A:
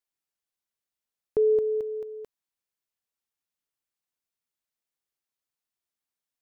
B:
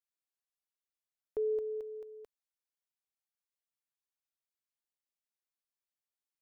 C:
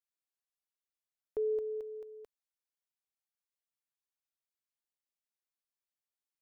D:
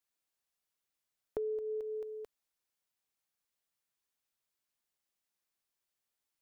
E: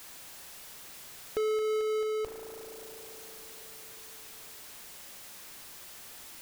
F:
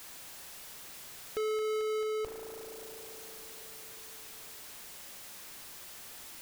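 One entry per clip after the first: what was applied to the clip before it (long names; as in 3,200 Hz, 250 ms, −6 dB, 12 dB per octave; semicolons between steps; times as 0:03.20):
parametric band 150 Hz −14 dB 1.4 octaves; level −8.5 dB
no processing that can be heard
downward compressor 6 to 1, threshold −41 dBFS, peak gain reduction 10 dB; level +6 dB
spring reverb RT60 3.1 s, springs 36 ms, chirp 45 ms, DRR 19 dB; power curve on the samples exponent 0.35
soft clipping −29.5 dBFS, distortion −18 dB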